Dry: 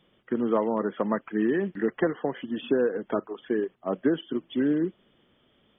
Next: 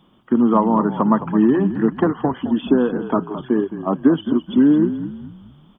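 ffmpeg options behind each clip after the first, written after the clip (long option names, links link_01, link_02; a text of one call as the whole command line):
ffmpeg -i in.wav -filter_complex "[0:a]acontrast=60,equalizer=frequency=250:width_type=o:width=1:gain=6,equalizer=frequency=500:width_type=o:width=1:gain=-9,equalizer=frequency=1000:width_type=o:width=1:gain=9,equalizer=frequency=2000:width_type=o:width=1:gain=-12,asplit=5[link_01][link_02][link_03][link_04][link_05];[link_02]adelay=214,afreqshift=-38,volume=-11.5dB[link_06];[link_03]adelay=428,afreqshift=-76,volume=-19.9dB[link_07];[link_04]adelay=642,afreqshift=-114,volume=-28.3dB[link_08];[link_05]adelay=856,afreqshift=-152,volume=-36.7dB[link_09];[link_01][link_06][link_07][link_08][link_09]amix=inputs=5:normalize=0,volume=2.5dB" out.wav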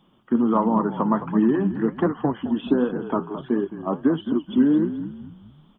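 ffmpeg -i in.wav -af "flanger=delay=3.3:depth=9.6:regen=68:speed=1.4:shape=triangular" out.wav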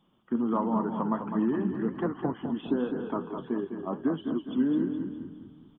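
ffmpeg -i in.wav -af "aecho=1:1:204|408|612|816|1020:0.398|0.171|0.0736|0.0317|0.0136,volume=-8dB" out.wav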